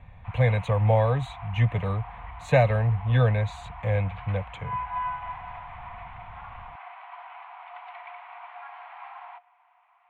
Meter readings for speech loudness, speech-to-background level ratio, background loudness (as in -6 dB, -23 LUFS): -25.0 LUFS, 15.0 dB, -40.0 LUFS